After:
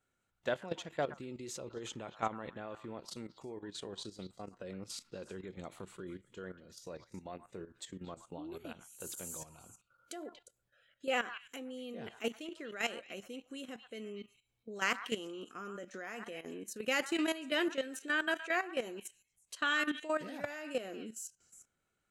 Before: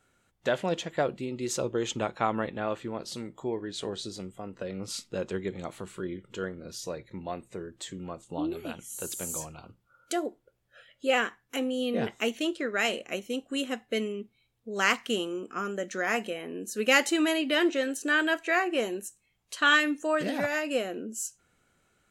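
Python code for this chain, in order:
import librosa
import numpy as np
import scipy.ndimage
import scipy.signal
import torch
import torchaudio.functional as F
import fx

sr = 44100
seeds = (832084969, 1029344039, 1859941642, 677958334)

y = fx.echo_stepped(x, sr, ms=118, hz=1200.0, octaves=1.4, feedback_pct=70, wet_db=-8.5)
y = fx.level_steps(y, sr, step_db=13)
y = y * 10.0 ** (-5.0 / 20.0)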